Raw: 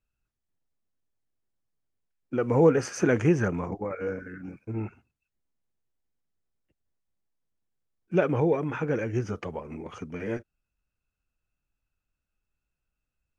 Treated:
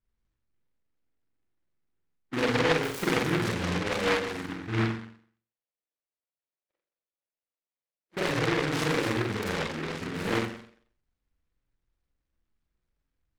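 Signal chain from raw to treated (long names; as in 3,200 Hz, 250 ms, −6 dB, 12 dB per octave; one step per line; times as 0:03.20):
adaptive Wiener filter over 15 samples
downward compressor 16 to 1, threshold −28 dBFS, peak gain reduction 15 dB
0:04.81–0:08.17: four-pole ladder band-pass 700 Hz, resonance 60%
flutter between parallel walls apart 7.6 metres, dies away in 0.5 s
convolution reverb RT60 0.50 s, pre-delay 27 ms, DRR −2.5 dB
short delay modulated by noise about 1,400 Hz, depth 0.26 ms
level −1.5 dB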